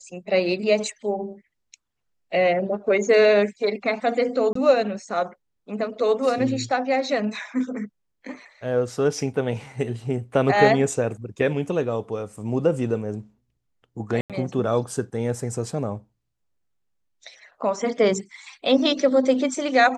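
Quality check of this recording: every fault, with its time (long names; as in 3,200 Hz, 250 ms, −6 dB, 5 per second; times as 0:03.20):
0:04.53–0:04.55: drop-out 24 ms
0:14.21–0:14.30: drop-out 87 ms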